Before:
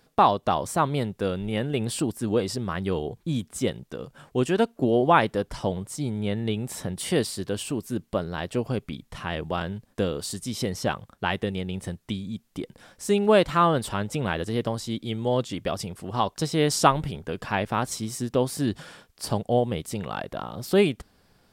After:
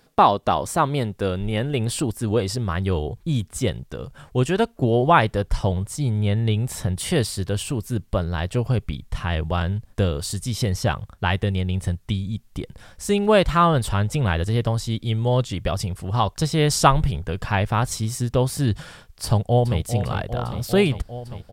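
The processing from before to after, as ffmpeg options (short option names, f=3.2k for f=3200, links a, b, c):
-filter_complex "[0:a]asplit=2[a][b];[b]afade=t=in:st=19.25:d=0.01,afade=t=out:st=19.83:d=0.01,aecho=0:1:400|800|1200|1600|2000|2400|2800|3200|3600|4000|4400|4800:0.316228|0.252982|0.202386|0.161909|0.129527|0.103622|0.0828972|0.0663178|0.0530542|0.0424434|0.0339547|0.0271638[c];[a][c]amix=inputs=2:normalize=0,asubboost=boost=6:cutoff=100,volume=3.5dB"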